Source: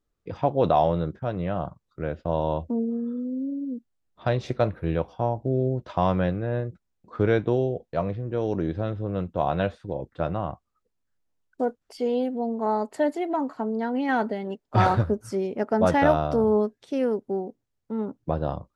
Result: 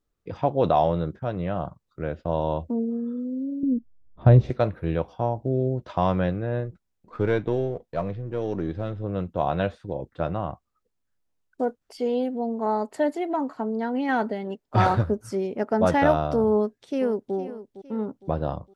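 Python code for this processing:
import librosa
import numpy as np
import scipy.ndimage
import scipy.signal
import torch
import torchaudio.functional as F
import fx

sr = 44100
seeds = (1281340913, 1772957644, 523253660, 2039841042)

y = fx.tilt_eq(x, sr, slope=-4.5, at=(3.63, 4.5))
y = fx.halfwave_gain(y, sr, db=-3.0, at=(6.65, 9.04))
y = fx.echo_throw(y, sr, start_s=16.55, length_s=0.8, ms=460, feedback_pct=45, wet_db=-14.0)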